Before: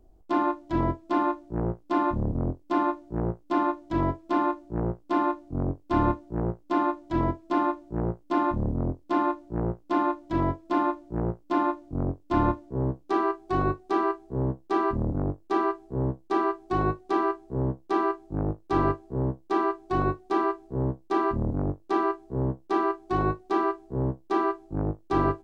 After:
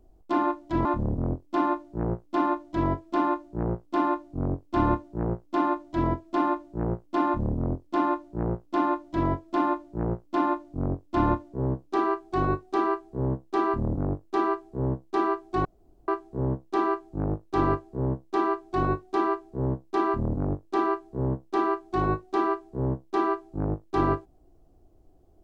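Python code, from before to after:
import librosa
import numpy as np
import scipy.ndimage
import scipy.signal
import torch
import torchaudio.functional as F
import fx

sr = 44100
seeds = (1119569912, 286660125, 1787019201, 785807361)

y = fx.edit(x, sr, fx.cut(start_s=0.85, length_s=1.17),
    fx.room_tone_fill(start_s=16.82, length_s=0.43), tone=tone)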